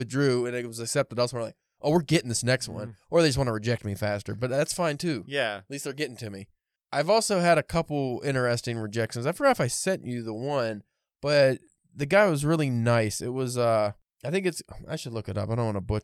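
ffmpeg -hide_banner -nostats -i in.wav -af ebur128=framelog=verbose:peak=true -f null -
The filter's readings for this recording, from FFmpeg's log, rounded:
Integrated loudness:
  I:         -26.6 LUFS
  Threshold: -37.0 LUFS
Loudness range:
  LRA:         3.1 LU
  Threshold: -46.8 LUFS
  LRA low:   -28.4 LUFS
  LRA high:  -25.3 LUFS
True peak:
  Peak:       -8.9 dBFS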